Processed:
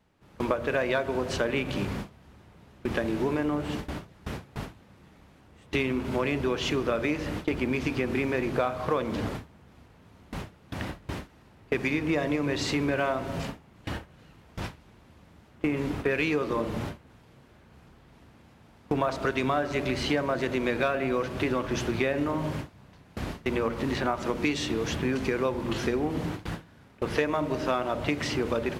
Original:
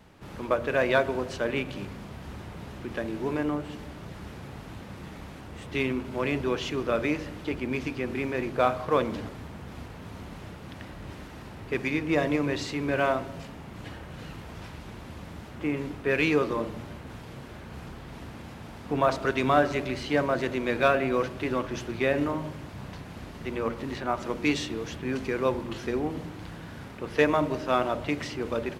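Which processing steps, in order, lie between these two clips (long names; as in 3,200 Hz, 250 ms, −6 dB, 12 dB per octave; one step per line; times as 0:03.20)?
noise gate with hold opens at −29 dBFS
downward compressor 6 to 1, threshold −32 dBFS, peak gain reduction 14.5 dB
level +8 dB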